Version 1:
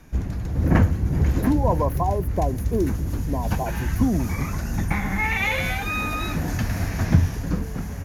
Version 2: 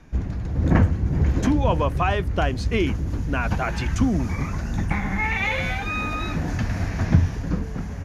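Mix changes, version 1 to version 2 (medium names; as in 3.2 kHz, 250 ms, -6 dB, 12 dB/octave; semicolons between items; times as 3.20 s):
speech: remove brick-wall FIR band-stop 1.1–9.5 kHz; master: add distance through air 74 m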